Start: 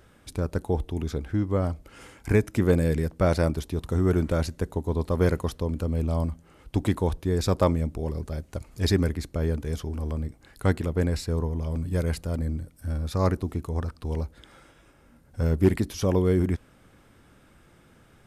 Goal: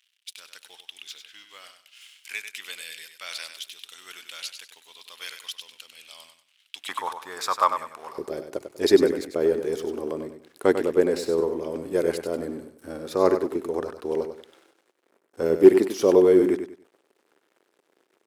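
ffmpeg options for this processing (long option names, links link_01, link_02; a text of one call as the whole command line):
ffmpeg -i in.wav -af "aeval=exprs='sgn(val(0))*max(abs(val(0))-0.00266,0)':channel_layout=same,asetnsamples=nb_out_samples=441:pad=0,asendcmd='6.89 highpass f 1100;8.18 highpass f 380',highpass=frequency=3000:width_type=q:width=3,aecho=1:1:97|194|291:0.376|0.105|0.0295,volume=2dB" out.wav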